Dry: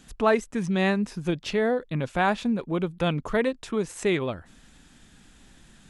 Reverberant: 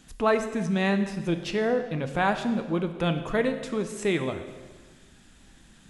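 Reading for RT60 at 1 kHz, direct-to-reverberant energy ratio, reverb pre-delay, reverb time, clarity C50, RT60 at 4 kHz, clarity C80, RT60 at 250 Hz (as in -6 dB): 1.4 s, 7.5 dB, 3 ms, 1.4 s, 9.5 dB, 1.3 s, 11.0 dB, 1.6 s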